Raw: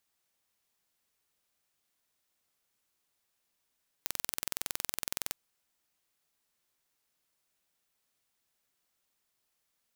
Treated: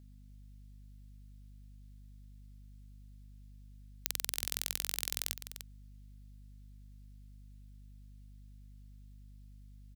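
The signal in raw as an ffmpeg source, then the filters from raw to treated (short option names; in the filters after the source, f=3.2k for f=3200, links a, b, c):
-f lavfi -i "aevalsrc='0.531*eq(mod(n,2042),0)':d=1.26:s=44100"
-filter_complex "[0:a]equalizer=f=250:t=o:w=1:g=-7,equalizer=f=1k:t=o:w=1:g=-8,equalizer=f=4k:t=o:w=1:g=3,aeval=exprs='val(0)+0.002*(sin(2*PI*50*n/s)+sin(2*PI*2*50*n/s)/2+sin(2*PI*3*50*n/s)/3+sin(2*PI*4*50*n/s)/4+sin(2*PI*5*50*n/s)/5)':c=same,asplit=2[a][b];[b]aecho=0:1:298:0.299[c];[a][c]amix=inputs=2:normalize=0"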